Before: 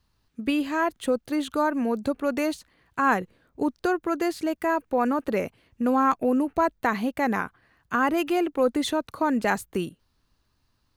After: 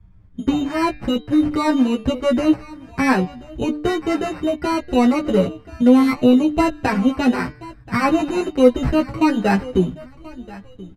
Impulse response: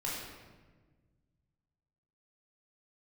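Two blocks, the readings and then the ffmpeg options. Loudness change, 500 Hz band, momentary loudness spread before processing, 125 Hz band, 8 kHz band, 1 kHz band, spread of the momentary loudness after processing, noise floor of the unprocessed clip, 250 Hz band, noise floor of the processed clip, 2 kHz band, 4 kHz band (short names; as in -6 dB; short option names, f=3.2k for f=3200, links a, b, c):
+7.0 dB, +6.5 dB, 7 LU, +15.0 dB, n/a, +2.0 dB, 14 LU, -71 dBFS, +9.5 dB, -45 dBFS, +3.0 dB, +7.0 dB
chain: -filter_complex "[0:a]acrossover=split=310[a][b];[a]acompressor=threshold=-41dB:ratio=6[c];[c][b]amix=inputs=2:normalize=0,lowshelf=f=370:g=11.5,asplit=2[d][e];[e]adelay=1032,lowpass=f=4.6k:p=1,volume=-20dB,asplit=2[f][g];[g]adelay=1032,lowpass=f=4.6k:p=1,volume=0.27[h];[f][h]amix=inputs=2:normalize=0[i];[d][i]amix=inputs=2:normalize=0,acrusher=samples=13:mix=1:aa=0.000001,lowpass=11k,bass=f=250:g=11,treble=f=4k:g=-12,acontrast=30,asplit=2[j][k];[k]adelay=16,volume=-6dB[l];[j][l]amix=inputs=2:normalize=0,bandreject=f=149.4:t=h:w=4,bandreject=f=298.8:t=h:w=4,bandreject=f=448.2:t=h:w=4,bandreject=f=597.6:t=h:w=4,bandreject=f=747:t=h:w=4,bandreject=f=896.4:t=h:w=4,bandreject=f=1.0458k:t=h:w=4,bandreject=f=1.1952k:t=h:w=4,bandreject=f=1.3446k:t=h:w=4,bandreject=f=1.494k:t=h:w=4,bandreject=f=1.6434k:t=h:w=4,bandreject=f=1.7928k:t=h:w=4,bandreject=f=1.9422k:t=h:w=4,bandreject=f=2.0916k:t=h:w=4,bandreject=f=2.241k:t=h:w=4,bandreject=f=2.3904k:t=h:w=4,bandreject=f=2.5398k:t=h:w=4,bandreject=f=2.6892k:t=h:w=4,bandreject=f=2.8386k:t=h:w=4,bandreject=f=2.988k:t=h:w=4,bandreject=f=3.1374k:t=h:w=4,bandreject=f=3.2868k:t=h:w=4,bandreject=f=3.4362k:t=h:w=4,bandreject=f=3.5856k:t=h:w=4,bandreject=f=3.735k:t=h:w=4,bandreject=f=3.8844k:t=h:w=4,bandreject=f=4.0338k:t=h:w=4,bandreject=f=4.1832k:t=h:w=4,bandreject=f=4.3326k:t=h:w=4,bandreject=f=4.482k:t=h:w=4,bandreject=f=4.6314k:t=h:w=4,bandreject=f=4.7808k:t=h:w=4,bandreject=f=4.9302k:t=h:w=4,bandreject=f=5.0796k:t=h:w=4,bandreject=f=5.229k:t=h:w=4,bandreject=f=5.3784k:t=h:w=4,asplit=2[m][n];[n]adelay=6.9,afreqshift=-0.75[o];[m][o]amix=inputs=2:normalize=1"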